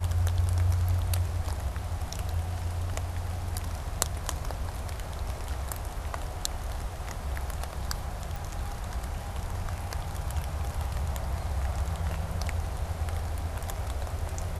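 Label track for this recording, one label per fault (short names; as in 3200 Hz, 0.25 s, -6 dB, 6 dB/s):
8.360000	8.360000	pop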